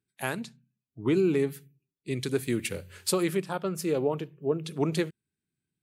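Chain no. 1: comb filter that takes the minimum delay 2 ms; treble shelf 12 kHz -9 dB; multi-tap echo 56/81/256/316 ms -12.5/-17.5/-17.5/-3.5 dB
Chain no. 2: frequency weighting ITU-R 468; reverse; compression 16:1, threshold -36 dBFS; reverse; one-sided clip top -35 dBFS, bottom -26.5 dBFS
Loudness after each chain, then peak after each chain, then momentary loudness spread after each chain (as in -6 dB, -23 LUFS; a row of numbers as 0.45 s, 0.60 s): -30.5 LUFS, -41.5 LUFS; -15.0 dBFS, -25.5 dBFS; 11 LU, 6 LU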